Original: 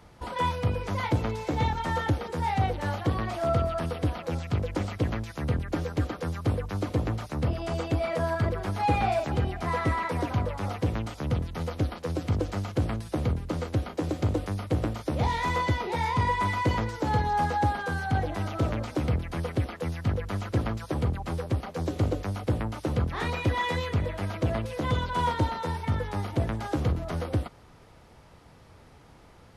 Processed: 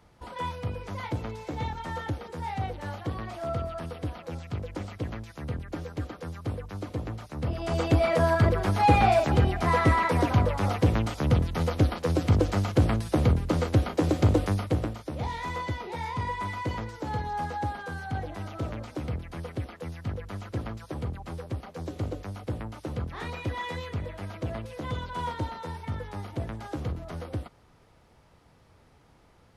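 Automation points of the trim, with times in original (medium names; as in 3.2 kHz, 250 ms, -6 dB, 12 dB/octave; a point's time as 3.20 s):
7.31 s -6 dB
7.87 s +5 dB
14.52 s +5 dB
15.04 s -6 dB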